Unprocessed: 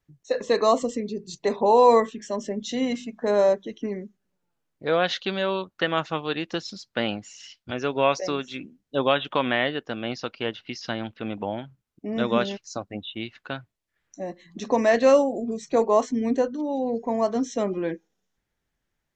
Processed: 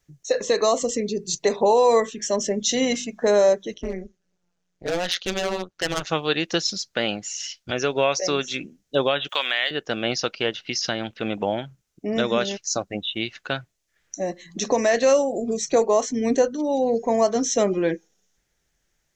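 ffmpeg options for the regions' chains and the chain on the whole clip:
-filter_complex "[0:a]asettb=1/sr,asplit=3[a][b][c];[a]atrim=end=3.744[d];[b]atrim=start=3.74:end=6.07,asetpts=PTS-STARTPTS,afade=t=in:d=0.004:c=qsin,afade=t=out:st=2.326:d=0.004:c=qsin,lowpass=6.3k,asoftclip=type=hard:threshold=-24dB,tremolo=f=180:d=0.919[e];[c]atrim=start=6.066[f];[d][e]acrossfade=d=0.004:c1=hsin:c2=qsin[g];[g][f]acrossfade=d=0.004:c1=qsin:c2=hsin,asettb=1/sr,asplit=3[h][i][j];[h]atrim=end=9.294[k];[i]atrim=start=9.29:end=9.71,asetpts=PTS-STARTPTS,afade=t=in:d=0.004:c=qsin,afade=t=out:st=0.416:d=0.004:c=qsin,highpass=f=1k:p=1,aemphasis=mode=production:type=riaa[l];[j]atrim=start=9.706[m];[k][l]acrossfade=d=0.004:c1=hsin:c2=qsin[n];[n][m]acrossfade=d=0.004:c1=qsin:c2=hsin,equalizer=f=100:t=o:w=0.67:g=-6,equalizer=f=250:t=o:w=0.67:g=-6,equalizer=f=1k:t=o:w=0.67:g=-5,equalizer=f=6.3k:t=o:w=0.67:g=9,alimiter=limit=-16.5dB:level=0:latency=1:release=327,volume=7.5dB"

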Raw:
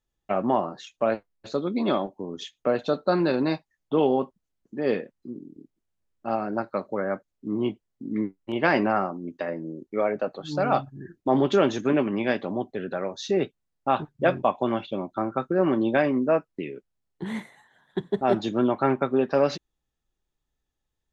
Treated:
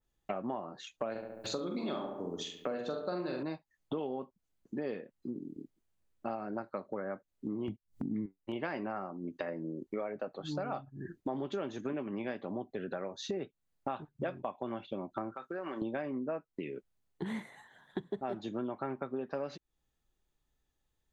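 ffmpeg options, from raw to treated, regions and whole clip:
-filter_complex "[0:a]asettb=1/sr,asplit=3[a][b][c];[a]atrim=end=1.114[d];[b]atrim=start=1.11:end=3.43,asetpts=PTS-STARTPTS,afade=t=in:d=0.004:c=qsin,afade=t=out:st=2.316:d=0.004:c=qsin,aemphasis=mode=production:type=75kf,asplit=2[e][f];[f]adelay=45,volume=-5dB[g];[e][g]amix=inputs=2:normalize=0,atrim=end_sample=102312,asplit=2[h][i];[i]adelay=70,lowpass=f=2.1k:p=1,volume=-7dB,asplit=2[j][k];[k]adelay=70,lowpass=f=2.1k:p=1,volume=0.52,asplit=2[l][m];[m]adelay=70,lowpass=f=2.1k:p=1,volume=0.52,asplit=2[n][o];[o]adelay=70,lowpass=f=2.1k:p=1,volume=0.52,asplit=2[p][q];[q]adelay=70,lowpass=f=2.1k:p=1,volume=0.52,asplit=2[r][s];[s]adelay=70,lowpass=f=2.1k:p=1,volume=0.52[t];[h][j][l][n][p][r][t]amix=inputs=7:normalize=0,atrim=end_sample=102312[u];[c]atrim=start=3.426[v];[d][u]acrossfade=d=0.004:c1=hsin:c2=qsin[w];[w][v]acrossfade=d=0.004:c1=qsin:c2=hsin,asettb=1/sr,asplit=3[x][y][z];[x]atrim=end=7.684[aa];[y]atrim=start=7.68:end=8.26,asetpts=PTS-STARTPTS,afade=t=in:d=0.004:c=qsin,afade=t=out:st=0.576:d=0.004:c=qsin,agate=range=-26dB:threshold=-44dB:ratio=16:release=100:detection=peak,bass=f=250:g=14,treble=f=4k:g=6,acompressor=mode=upward:threshold=-28dB:ratio=2.5:attack=3.2:release=140:knee=2.83:detection=peak[ab];[z]atrim=start=8.256[ac];[aa][ab]acrossfade=d=0.004:c1=hsin:c2=qsin[ad];[ad][ac]acrossfade=d=0.004:c1=qsin:c2=hsin,asettb=1/sr,asplit=3[ae][af][ag];[ae]atrim=end=15.344[ah];[af]atrim=start=15.34:end=15.82,asetpts=PTS-STARTPTS,afade=t=in:d=0.004:c=qsin,afade=t=out:st=0.476:d=0.004:c=qsin,highpass=f=1.4k:p=1,acompressor=threshold=-33dB:ratio=3:attack=3.2:release=140:knee=1:detection=peak[ai];[ag]atrim=start=15.816[aj];[ah][ai]acrossfade=d=0.004:c1=hsin:c2=qsin[ak];[ak][aj]acrossfade=d=0.004:c1=qsin:c2=hsin,bandreject=f=5.4k:w=18,acompressor=threshold=-36dB:ratio=6,adynamicequalizer=threshold=0.002:dfrequency=2200:dqfactor=0.7:tfrequency=2200:tqfactor=0.7:attack=5:release=100:ratio=0.375:range=2.5:mode=cutabove:tftype=highshelf,volume=1dB"

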